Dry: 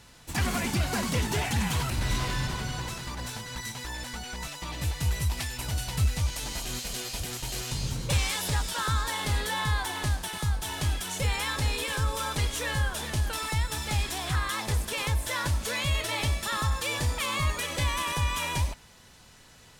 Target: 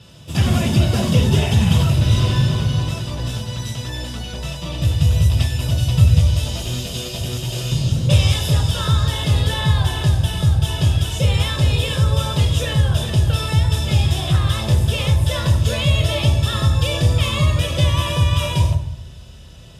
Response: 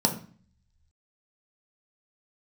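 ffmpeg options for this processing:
-filter_complex "[0:a]bandreject=f=46.57:t=h:w=4,bandreject=f=93.14:t=h:w=4,bandreject=f=139.71:t=h:w=4,bandreject=f=186.28:t=h:w=4,bandreject=f=232.85:t=h:w=4,bandreject=f=279.42:t=h:w=4,bandreject=f=325.99:t=h:w=4,bandreject=f=372.56:t=h:w=4,bandreject=f=419.13:t=h:w=4,bandreject=f=465.7:t=h:w=4,bandreject=f=512.27:t=h:w=4,bandreject=f=558.84:t=h:w=4,bandreject=f=605.41:t=h:w=4,bandreject=f=651.98:t=h:w=4,bandreject=f=698.55:t=h:w=4,bandreject=f=745.12:t=h:w=4,bandreject=f=791.69:t=h:w=4,bandreject=f=838.26:t=h:w=4,bandreject=f=884.83:t=h:w=4,bandreject=f=931.4:t=h:w=4,bandreject=f=977.97:t=h:w=4,bandreject=f=1024.54:t=h:w=4,bandreject=f=1071.11:t=h:w=4,bandreject=f=1117.68:t=h:w=4,bandreject=f=1164.25:t=h:w=4,bandreject=f=1210.82:t=h:w=4,bandreject=f=1257.39:t=h:w=4[s0];[1:a]atrim=start_sample=2205,asetrate=28665,aresample=44100[s1];[s0][s1]afir=irnorm=-1:irlink=0,volume=0.422"

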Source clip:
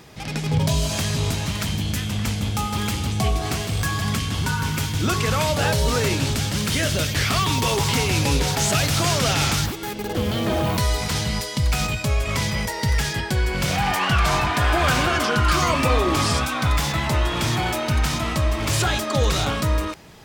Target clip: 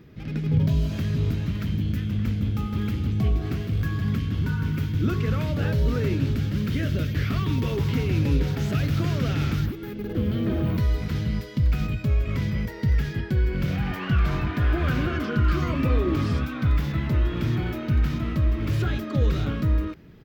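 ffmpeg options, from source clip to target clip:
-af "firequalizer=gain_entry='entry(300,0);entry(800,-18);entry(1400,-9);entry(8600,-29);entry(15000,-11)':delay=0.05:min_phase=1"

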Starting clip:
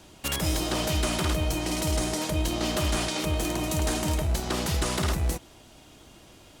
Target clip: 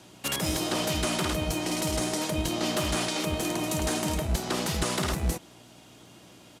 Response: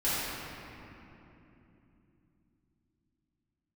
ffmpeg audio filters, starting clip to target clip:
-filter_complex "[0:a]aeval=exprs='val(0)+0.00282*(sin(2*PI*60*n/s)+sin(2*PI*2*60*n/s)/2+sin(2*PI*3*60*n/s)/3+sin(2*PI*4*60*n/s)/4+sin(2*PI*5*60*n/s)/5)':c=same,acrossover=split=100|480|8000[s0][s1][s2][s3];[s0]acrusher=bits=3:mix=0:aa=0.5[s4];[s4][s1][s2][s3]amix=inputs=4:normalize=0,aresample=32000,aresample=44100"

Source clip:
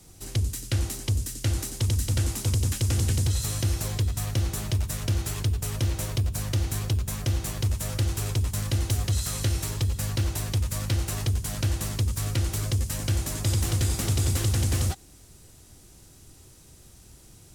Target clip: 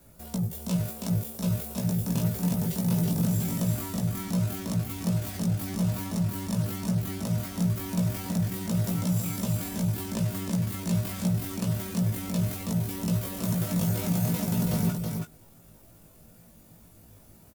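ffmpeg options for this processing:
-filter_complex "[0:a]asetrate=80880,aresample=44100,atempo=0.545254,asplit=2[s0][s1];[s1]adelay=18,volume=0.631[s2];[s0][s2]amix=inputs=2:normalize=0,aecho=1:1:325:0.596,volume=0.562"

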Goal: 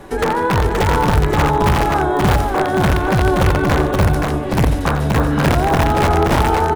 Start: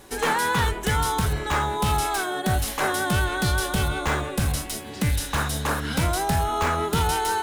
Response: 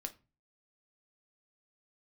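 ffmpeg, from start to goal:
-filter_complex "[0:a]acrossover=split=89|890[s0][s1][s2];[s0]acompressor=threshold=0.0398:ratio=4[s3];[s1]acompressor=threshold=0.0447:ratio=4[s4];[s2]acompressor=threshold=0.0126:ratio=4[s5];[s3][s4][s5]amix=inputs=3:normalize=0,asplit=2[s6][s7];[1:a]atrim=start_sample=2205,lowpass=2800[s8];[s7][s8]afir=irnorm=-1:irlink=0,volume=0.841[s9];[s6][s9]amix=inputs=2:normalize=0,aeval=exprs='(mod(6.31*val(0)+1,2)-1)/6.31':c=same,atempo=1.1,highshelf=f=3400:g=-12,asplit=2[s10][s11];[s11]aecho=0:1:88|148|525:0.266|0.133|0.668[s12];[s10][s12]amix=inputs=2:normalize=0,volume=2.66"

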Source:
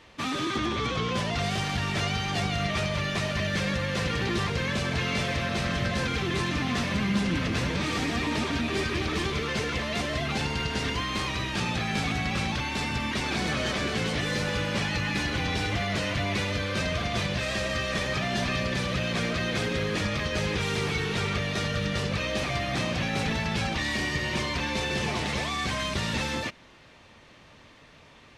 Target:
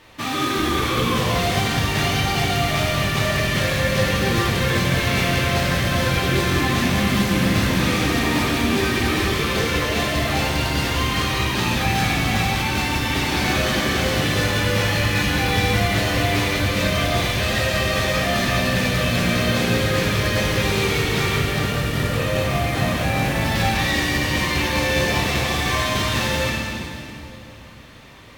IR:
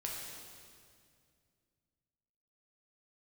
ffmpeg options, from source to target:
-filter_complex "[0:a]asettb=1/sr,asplit=3[s0][s1][s2];[s0]atrim=end=21.354[s3];[s1]atrim=start=21.35:end=23.41,asetpts=PTS-STARTPTS,afade=t=in:d=0.004:c=qsin,afade=t=out:st=2.056:d=0.004:c=qsin,highshelf=f=3700:g=-10[s4];[s2]atrim=start=23.406[s5];[s3][s4]acrossfade=d=0.004:c1=hsin:c2=qsin[s6];[s6][s5]acrossfade=d=0.004:c1=qsin:c2=hsin,acrusher=bits=3:mode=log:mix=0:aa=0.000001[s7];[1:a]atrim=start_sample=2205,asetrate=35280,aresample=44100[s8];[s7][s8]afir=irnorm=-1:irlink=0,volume=1.88"

